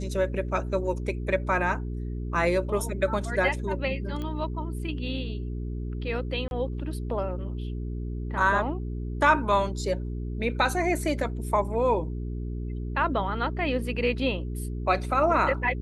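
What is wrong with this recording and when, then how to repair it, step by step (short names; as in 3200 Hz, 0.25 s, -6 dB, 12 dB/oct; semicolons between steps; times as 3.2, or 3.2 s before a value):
hum 60 Hz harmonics 7 -32 dBFS
4.22 pop -23 dBFS
6.48–6.51 gap 31 ms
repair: de-click; de-hum 60 Hz, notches 7; interpolate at 6.48, 31 ms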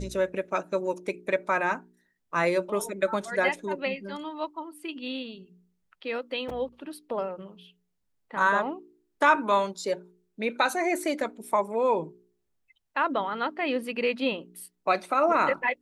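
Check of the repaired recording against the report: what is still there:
none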